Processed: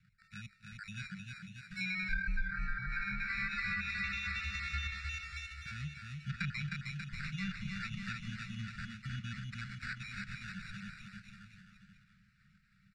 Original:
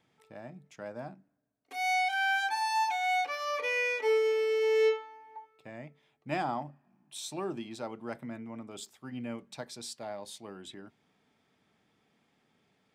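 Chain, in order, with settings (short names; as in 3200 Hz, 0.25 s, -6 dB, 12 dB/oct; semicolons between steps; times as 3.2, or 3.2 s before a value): random spectral dropouts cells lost 39%; sample-and-hold 14×; tilt -2.5 dB/oct; compressor 2:1, threshold -32 dBFS, peak gain reduction 7 dB; Chebyshev band-stop 200–1400 Hz, order 5; low shelf 470 Hz -8 dB; bouncing-ball echo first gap 0.31 s, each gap 0.9×, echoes 5; treble ducked by the level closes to 960 Hz, closed at -36 dBFS; Bessel low-pass 5000 Hz, order 2; warbling echo 0.277 s, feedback 63%, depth 137 cents, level -18 dB; gain +9.5 dB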